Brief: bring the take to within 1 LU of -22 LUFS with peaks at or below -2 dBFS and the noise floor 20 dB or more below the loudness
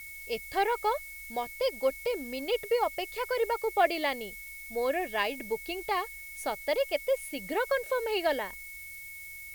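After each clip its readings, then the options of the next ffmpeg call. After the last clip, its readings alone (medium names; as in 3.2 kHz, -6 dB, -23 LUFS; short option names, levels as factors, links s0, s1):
steady tone 2.2 kHz; tone level -43 dBFS; noise floor -44 dBFS; noise floor target -51 dBFS; loudness -31.0 LUFS; peak level -13.0 dBFS; loudness target -22.0 LUFS
-> -af "bandreject=f=2200:w=30"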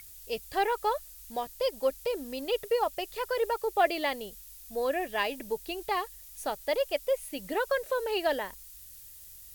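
steady tone not found; noise floor -49 dBFS; noise floor target -52 dBFS
-> -af "afftdn=nr=6:nf=-49"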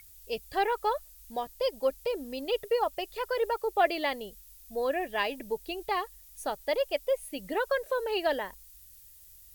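noise floor -54 dBFS; loudness -31.5 LUFS; peak level -13.0 dBFS; loudness target -22.0 LUFS
-> -af "volume=2.99"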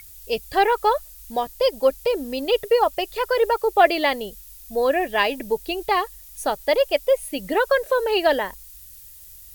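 loudness -22.0 LUFS; peak level -3.5 dBFS; noise floor -44 dBFS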